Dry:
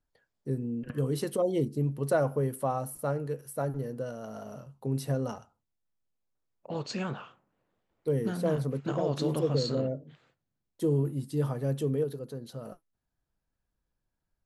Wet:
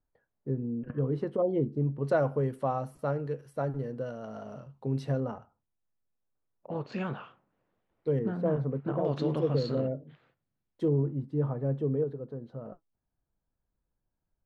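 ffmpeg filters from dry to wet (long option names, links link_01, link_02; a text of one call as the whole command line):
ffmpeg -i in.wav -af "asetnsamples=nb_out_samples=441:pad=0,asendcmd='2.05 lowpass f 3700;5.2 lowpass f 1700;6.92 lowpass f 3200;8.19 lowpass f 1400;9.05 lowpass f 3000;10.88 lowpass f 1200',lowpass=1400" out.wav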